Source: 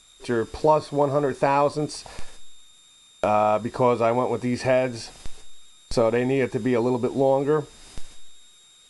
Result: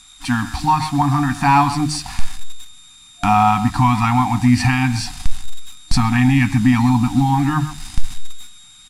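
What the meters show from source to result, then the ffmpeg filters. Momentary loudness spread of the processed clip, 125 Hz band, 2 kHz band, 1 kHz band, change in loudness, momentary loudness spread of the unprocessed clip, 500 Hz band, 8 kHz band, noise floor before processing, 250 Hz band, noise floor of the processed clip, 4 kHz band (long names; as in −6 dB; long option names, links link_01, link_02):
17 LU, +14.5 dB, +10.0 dB, +8.0 dB, +6.0 dB, 9 LU, below −10 dB, +11.0 dB, −54 dBFS, +10.5 dB, −45 dBFS, +10.5 dB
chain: -filter_complex "[0:a]bandreject=frequency=50:width_type=h:width=6,bandreject=frequency=100:width_type=h:width=6,bandreject=frequency=150:width_type=h:width=6,asplit=2[link_01][link_02];[link_02]adelay=130,highpass=300,lowpass=3400,asoftclip=type=hard:threshold=-14.5dB,volume=-13dB[link_03];[link_01][link_03]amix=inputs=2:normalize=0,asubboost=boost=2:cutoff=230,apsyclip=15.5dB,asplit=2[link_04][link_05];[link_05]acrusher=bits=3:mix=0:aa=0.000001,volume=-11dB[link_06];[link_04][link_06]amix=inputs=2:normalize=0,afftfilt=real='re*(1-between(b*sr/4096,310,700))':imag='im*(1-between(b*sr/4096,310,700))':win_size=4096:overlap=0.75,aresample=32000,aresample=44100,volume=-7dB"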